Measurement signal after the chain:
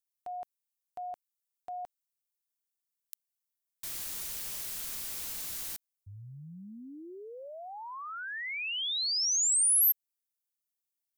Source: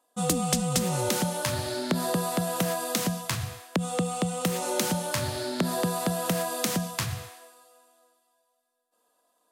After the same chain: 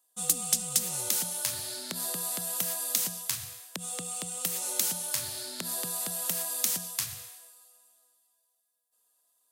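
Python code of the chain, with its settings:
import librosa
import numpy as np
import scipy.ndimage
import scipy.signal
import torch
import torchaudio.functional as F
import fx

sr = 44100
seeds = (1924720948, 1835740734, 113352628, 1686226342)

y = F.preemphasis(torch.from_numpy(x), 0.9).numpy()
y = y * librosa.db_to_amplitude(3.0)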